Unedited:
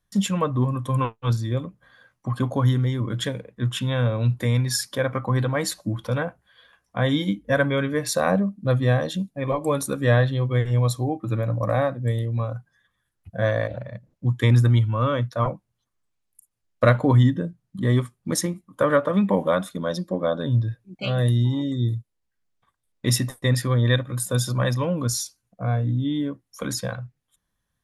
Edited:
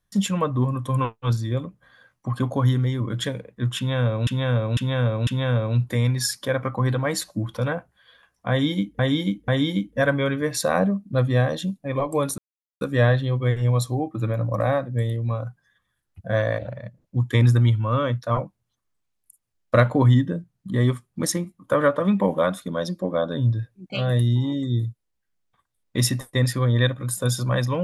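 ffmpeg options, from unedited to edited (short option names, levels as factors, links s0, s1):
-filter_complex "[0:a]asplit=7[s0][s1][s2][s3][s4][s5][s6];[s0]atrim=end=4.272[s7];[s1]atrim=start=3.768:end=4.272[s8];[s2]atrim=start=3.768:end=4.272[s9];[s3]atrim=start=3.768:end=7.492[s10];[s4]atrim=start=6.998:end=7.492[s11];[s5]atrim=start=6.998:end=9.9,asetpts=PTS-STARTPTS,afade=t=out:st=2.898:d=0.004:c=hsin,apad=pad_dur=0.43[s12];[s6]atrim=start=9.9,asetpts=PTS-STARTPTS,afade=t=in:d=0.004:c=hsin[s13];[s7][s8]acrossfade=d=0.004:c1=hsin:c2=hsin[s14];[s14][s9]acrossfade=d=0.004:c1=hsin:c2=hsin[s15];[s15][s10]acrossfade=d=0.004:c1=hsin:c2=hsin[s16];[s16][s11]acrossfade=d=0.004:c1=hsin:c2=hsin[s17];[s12][s13]concat=n=2:v=0:a=1[s18];[s17][s18]acrossfade=d=0.004:c1=hsin:c2=hsin"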